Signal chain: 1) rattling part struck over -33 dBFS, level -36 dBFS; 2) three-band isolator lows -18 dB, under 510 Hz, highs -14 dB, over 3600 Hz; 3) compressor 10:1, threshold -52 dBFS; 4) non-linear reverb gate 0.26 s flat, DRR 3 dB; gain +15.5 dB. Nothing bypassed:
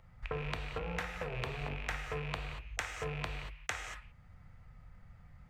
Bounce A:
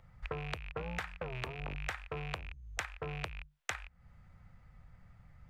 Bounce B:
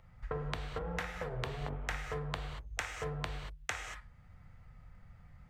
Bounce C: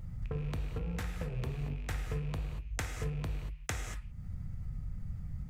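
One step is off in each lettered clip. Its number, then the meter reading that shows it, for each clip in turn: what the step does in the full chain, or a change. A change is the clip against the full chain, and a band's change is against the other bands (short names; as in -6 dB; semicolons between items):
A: 4, crest factor change +2.0 dB; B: 1, 2 kHz band -1.5 dB; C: 2, 125 Hz band +10.5 dB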